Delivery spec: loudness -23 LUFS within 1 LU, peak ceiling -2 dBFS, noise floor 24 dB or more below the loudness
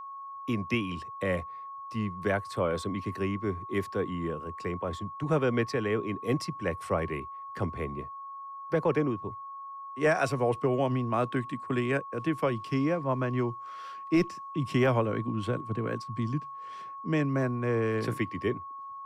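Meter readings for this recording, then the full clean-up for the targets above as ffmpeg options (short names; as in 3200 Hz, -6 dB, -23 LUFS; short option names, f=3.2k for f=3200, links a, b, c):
steady tone 1100 Hz; tone level -39 dBFS; loudness -30.5 LUFS; peak -15.0 dBFS; loudness target -23.0 LUFS
-> -af "bandreject=f=1.1k:w=30"
-af "volume=7.5dB"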